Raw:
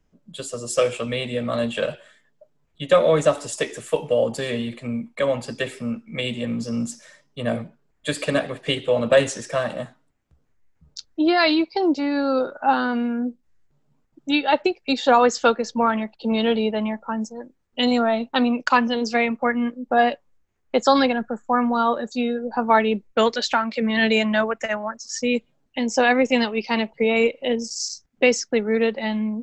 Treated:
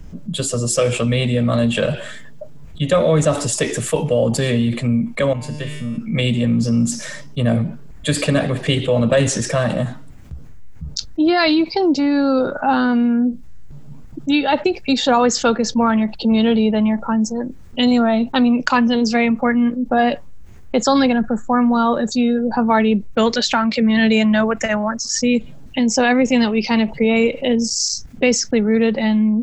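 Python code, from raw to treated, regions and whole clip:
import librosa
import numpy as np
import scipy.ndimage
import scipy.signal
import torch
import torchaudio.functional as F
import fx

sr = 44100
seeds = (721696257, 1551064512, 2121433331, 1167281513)

y = fx.chain(x, sr, fx.low_shelf(hz=150.0, db=6.5),
    fx.comb_fb(f0_hz=150.0, decay_s=0.96, harmonics='all', damping=0.0, mix_pct=90), at=(5.33, 5.98))
y = fx.bass_treble(y, sr, bass_db=12, treble_db=2)
y = fx.env_flatten(y, sr, amount_pct=50)
y = y * 10.0 ** (-1.5 / 20.0)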